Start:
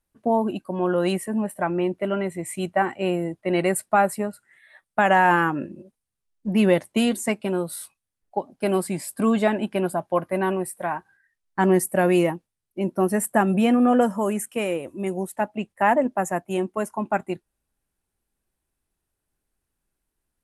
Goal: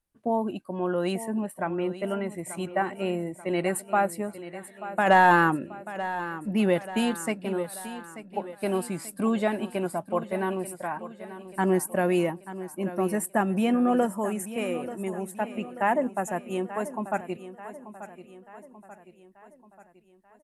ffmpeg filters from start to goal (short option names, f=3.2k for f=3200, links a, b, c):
-filter_complex "[0:a]asplit=3[a][b][c];[a]afade=t=out:st=5.06:d=0.02[d];[b]acontrast=51,afade=t=in:st=5.06:d=0.02,afade=t=out:st=5.55:d=0.02[e];[c]afade=t=in:st=5.55:d=0.02[f];[d][e][f]amix=inputs=3:normalize=0,aecho=1:1:886|1772|2658|3544|4430:0.211|0.108|0.055|0.028|0.0143,volume=-5dB"